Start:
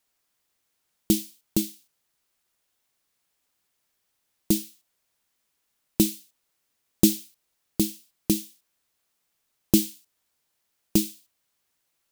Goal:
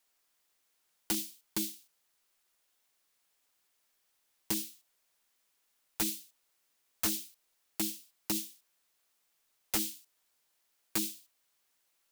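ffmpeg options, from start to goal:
-af "equalizer=f=97:w=0.44:g=-9.5,aeval=exprs='(mod(5.62*val(0)+1,2)-1)/5.62':c=same,alimiter=limit=0.075:level=0:latency=1:release=36"

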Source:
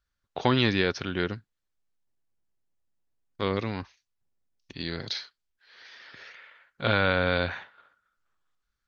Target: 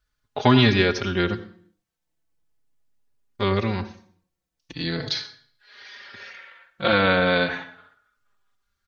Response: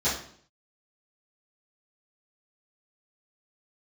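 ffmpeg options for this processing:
-filter_complex "[0:a]asplit=2[s0][s1];[1:a]atrim=start_sample=2205,adelay=69[s2];[s1][s2]afir=irnorm=-1:irlink=0,volume=0.0531[s3];[s0][s3]amix=inputs=2:normalize=0,asplit=2[s4][s5];[s5]adelay=4.2,afreqshift=-0.39[s6];[s4][s6]amix=inputs=2:normalize=1,volume=2.66"

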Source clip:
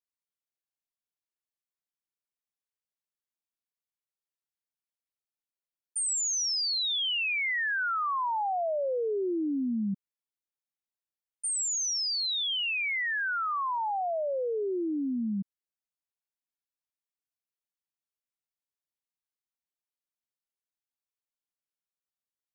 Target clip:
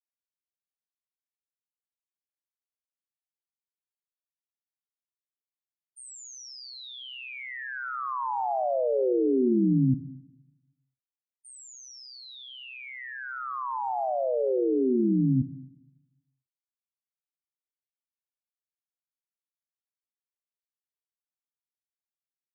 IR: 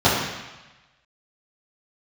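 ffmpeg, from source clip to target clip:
-filter_complex "[0:a]tiltshelf=f=860:g=8,agate=range=0.0224:threshold=0.0282:ratio=3:detection=peak,aeval=exprs='val(0)*sin(2*PI*64*n/s)':c=same,asplit=2[s0][s1];[1:a]atrim=start_sample=2205,adelay=56[s2];[s1][s2]afir=irnorm=-1:irlink=0,volume=0.00794[s3];[s0][s3]amix=inputs=2:normalize=0,volume=1.5"

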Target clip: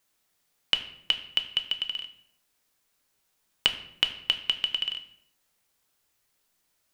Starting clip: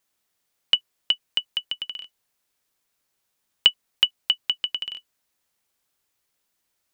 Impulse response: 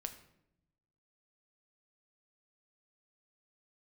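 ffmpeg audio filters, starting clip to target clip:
-filter_complex "[0:a]acompressor=threshold=0.0794:ratio=6[s0];[1:a]atrim=start_sample=2205,afade=t=out:st=0.43:d=0.01,atrim=end_sample=19404[s1];[s0][s1]afir=irnorm=-1:irlink=0,volume=1.78"

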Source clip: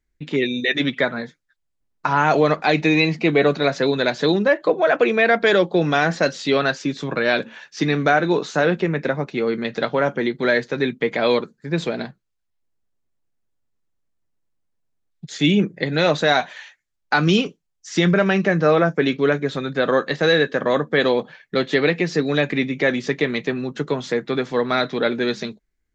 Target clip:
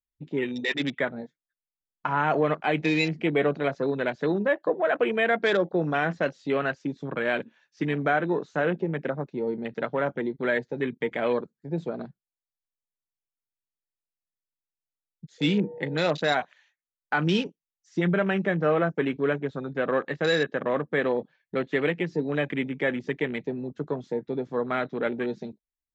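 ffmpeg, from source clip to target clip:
-filter_complex "[0:a]asettb=1/sr,asplit=3[s0][s1][s2];[s0]atrim=end=15.384[s3];[s1]atrim=start=15.38:end=15.98,asetpts=PTS-STARTPTS,afade=t=in:d=0.004:c=qsin,afade=t=out:st=0.596:d=0.004:c=qsin,aeval=exprs='val(0)+0.0316*sin(2*PI*480*n/s)':c=same[s4];[s2]atrim=start=15.976[s5];[s3][s4]acrossfade=d=0.004:c1=hsin:c2=qsin[s6];[s6][s5]acrossfade=d=0.004:c1=qsin:c2=hsin,afwtdn=0.0447,volume=0.447"

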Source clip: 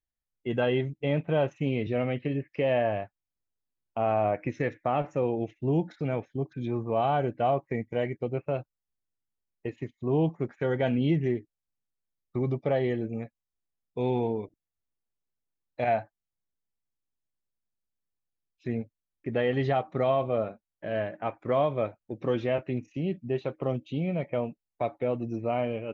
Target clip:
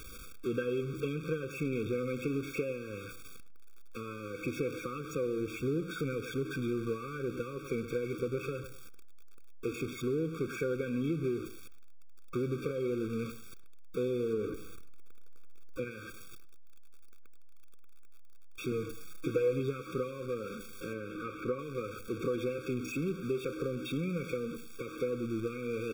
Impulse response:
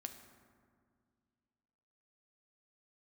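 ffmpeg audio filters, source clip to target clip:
-filter_complex "[0:a]aeval=exprs='val(0)+0.5*0.0266*sgn(val(0))':c=same,asettb=1/sr,asplit=3[s0][s1][s2];[s0]atrim=end=14.334[s3];[s1]atrim=start=14.33:end=15.91,asetpts=PTS-STARTPTS,afade=t=in:d=0.004:c=qsin,afade=t=out:st=1.576:d=0.004:c=qsin,tiltshelf=f=1300:g=4[s4];[s2]atrim=start=15.906[s5];[s3][s4]acrossfade=d=0.004:c1=hsin:c2=qsin[s6];[s6][s5]acrossfade=d=0.004:c1=qsin:c2=hsin,asettb=1/sr,asplit=3[s7][s8][s9];[s7]atrim=end=20.934[s10];[s8]atrim=start=20.93:end=21.59,asetpts=PTS-STARTPTS,afade=t=in:d=0.004:c=qsin,afade=t=out:st=0.656:d=0.004:c=qsin,acrossover=split=2800[s11][s12];[s12]acompressor=threshold=0.00316:ratio=4:attack=1:release=60[s13];[s11][s13]amix=inputs=2:normalize=0[s14];[s9]atrim=start=21.586[s15];[s10][s14]acrossfade=d=0.004:c1=hsin:c2=qsin[s16];[s16][s15]acrossfade=d=0.004:c1=qsin:c2=hsin,bass=f=250:g=-7,treble=f=4000:g=-5,asplit=2[s17][s18];[s18]adelay=105,lowpass=f=2100:p=1,volume=0.178,asplit=2[s19][s20];[s20]adelay=105,lowpass=f=2100:p=1,volume=0.23[s21];[s19][s21]amix=inputs=2:normalize=0[s22];[s17][s22]amix=inputs=2:normalize=0,acompressor=threshold=0.0355:ratio=5,asettb=1/sr,asplit=3[s23][s24][s25];[s23]atrim=end=18.714[s26];[s24]atrim=start=18.71:end=19.6,asetpts=PTS-STARTPTS,afade=t=in:d=0.004:c=qsin,afade=t=out:st=0.886:d=0.004:c=qsin,aecho=1:1:6.3:0.81,atrim=end_sample=39249[s27];[s25]atrim=start=19.596[s28];[s26][s27]acrossfade=d=0.004:c1=hsin:c2=qsin[s29];[s29][s28]acrossfade=d=0.004:c1=qsin:c2=hsin,afftfilt=real='re*eq(mod(floor(b*sr/1024/540),2),0)':imag='im*eq(mod(floor(b*sr/1024/540),2),0)':win_size=1024:overlap=0.75"

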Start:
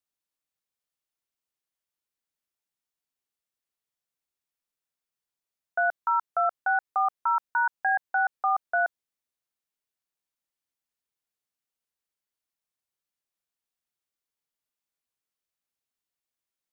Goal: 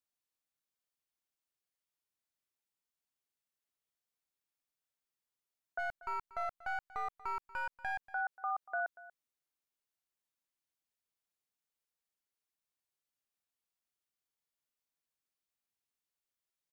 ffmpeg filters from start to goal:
-filter_complex "[0:a]asplit=3[s0][s1][s2];[s0]afade=t=out:st=5.78:d=0.02[s3];[s1]aeval=exprs='if(lt(val(0),0),0.447*val(0),val(0))':c=same,afade=t=in:st=5.78:d=0.02,afade=t=out:st=8.03:d=0.02[s4];[s2]afade=t=in:st=8.03:d=0.02[s5];[s3][s4][s5]amix=inputs=3:normalize=0,alimiter=level_in=1.12:limit=0.0631:level=0:latency=1:release=68,volume=0.891,aecho=1:1:237:0.119,volume=0.668"

